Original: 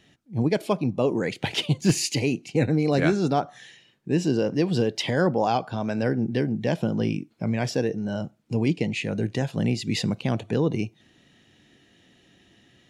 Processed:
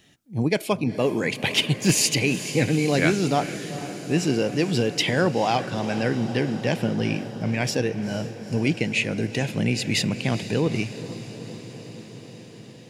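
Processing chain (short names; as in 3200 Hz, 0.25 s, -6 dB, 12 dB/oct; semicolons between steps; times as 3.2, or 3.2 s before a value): high shelf 6700 Hz +12 dB; diffused feedback echo 0.457 s, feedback 73%, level -13 dB; dynamic EQ 2300 Hz, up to +7 dB, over -46 dBFS, Q 1.8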